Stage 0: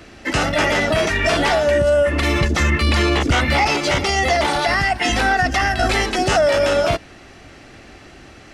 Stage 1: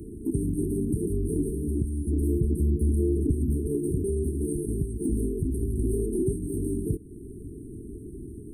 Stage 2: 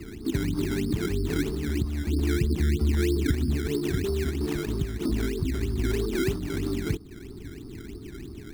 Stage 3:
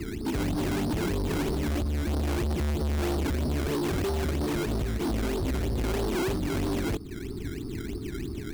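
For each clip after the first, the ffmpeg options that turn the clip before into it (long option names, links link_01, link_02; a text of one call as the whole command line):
ffmpeg -i in.wav -af "afftfilt=real='re*(1-between(b*sr/4096,450,8400))':imag='im*(1-between(b*sr/4096,450,8400))':win_size=4096:overlap=0.75,acompressor=threshold=-35dB:ratio=2,volume=5dB" out.wav
ffmpeg -i in.wav -af "acrusher=samples=17:mix=1:aa=0.000001:lfo=1:lforange=17:lforate=3.1" out.wav
ffmpeg -i in.wav -af "asoftclip=type=hard:threshold=-31.5dB,volume=5.5dB" out.wav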